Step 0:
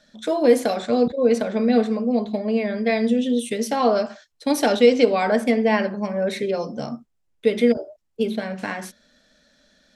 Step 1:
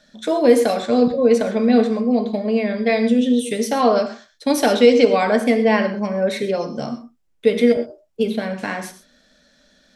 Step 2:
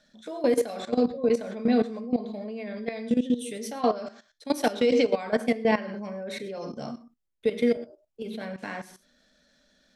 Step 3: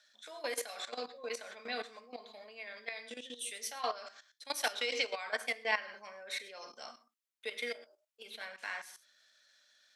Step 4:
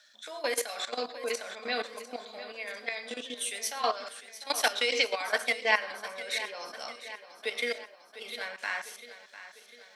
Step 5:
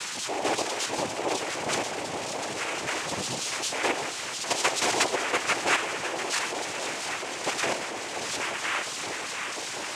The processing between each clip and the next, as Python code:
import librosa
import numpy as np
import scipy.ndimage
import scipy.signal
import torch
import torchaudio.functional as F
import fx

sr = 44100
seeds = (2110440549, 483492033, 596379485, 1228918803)

y1 = fx.rev_gated(x, sr, seeds[0], gate_ms=150, shape='flat', drr_db=9.0)
y1 = F.gain(torch.from_numpy(y1), 2.5).numpy()
y2 = fx.level_steps(y1, sr, step_db=15)
y2 = F.gain(torch.from_numpy(y2), -5.0).numpy()
y3 = scipy.signal.sosfilt(scipy.signal.butter(2, 1300.0, 'highpass', fs=sr, output='sos'), y2)
y4 = fx.echo_feedback(y3, sr, ms=700, feedback_pct=55, wet_db=-14.0)
y4 = F.gain(torch.from_numpy(y4), 7.0).numpy()
y5 = y4 + 0.5 * 10.0 ** (-28.0 / 20.0) * np.sign(y4)
y5 = fx.noise_vocoder(y5, sr, seeds[1], bands=4)